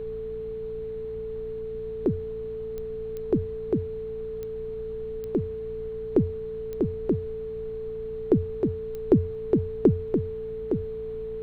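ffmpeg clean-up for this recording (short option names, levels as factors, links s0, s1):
-af "adeclick=t=4,bandreject=f=57.2:t=h:w=4,bandreject=f=114.4:t=h:w=4,bandreject=f=171.6:t=h:w=4,bandreject=f=228.8:t=h:w=4,bandreject=f=440:w=30,afftdn=nr=30:nf=-34"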